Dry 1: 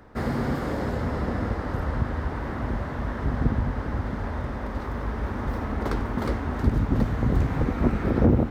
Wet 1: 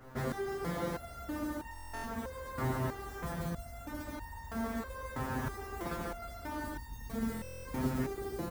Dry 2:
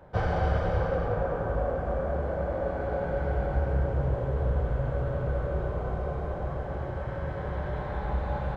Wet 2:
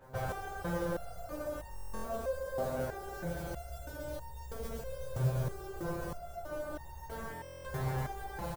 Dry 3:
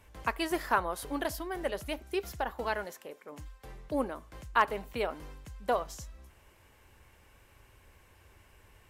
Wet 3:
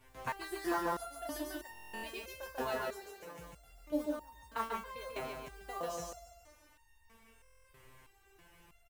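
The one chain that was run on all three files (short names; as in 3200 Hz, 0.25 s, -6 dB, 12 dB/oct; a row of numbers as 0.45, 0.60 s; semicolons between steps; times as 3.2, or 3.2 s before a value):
compressor 4:1, threshold -30 dBFS; feedback echo 0.143 s, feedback 53%, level -3 dB; modulation noise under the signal 20 dB; stuck buffer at 1.69/7.3, samples 1024, times 14; stepped resonator 3.1 Hz 130–910 Hz; gain +9 dB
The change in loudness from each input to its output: -12.0, -9.0, -7.0 LU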